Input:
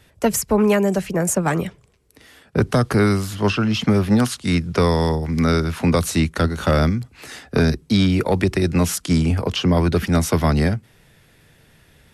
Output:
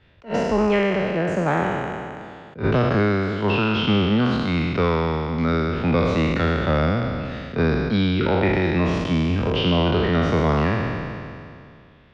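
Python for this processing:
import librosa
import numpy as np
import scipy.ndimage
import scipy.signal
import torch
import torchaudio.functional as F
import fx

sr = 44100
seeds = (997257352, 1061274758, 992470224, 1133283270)

y = fx.spec_trails(x, sr, decay_s=2.41)
y = scipy.signal.sosfilt(scipy.signal.butter(4, 3700.0, 'lowpass', fs=sr, output='sos'), y)
y = fx.attack_slew(y, sr, db_per_s=230.0)
y = y * librosa.db_to_amplitude(-5.0)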